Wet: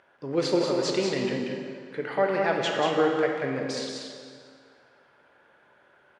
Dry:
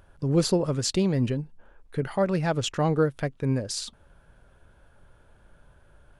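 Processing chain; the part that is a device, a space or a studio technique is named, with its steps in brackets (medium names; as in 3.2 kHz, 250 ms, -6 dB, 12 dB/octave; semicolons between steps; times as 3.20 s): station announcement (band-pass 370–4300 Hz; peaking EQ 2 kHz +7 dB 0.43 oct; loudspeakers at several distances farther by 64 m -5 dB, 78 m -12 dB; reverberation RT60 2.1 s, pre-delay 8 ms, DRR 2 dB)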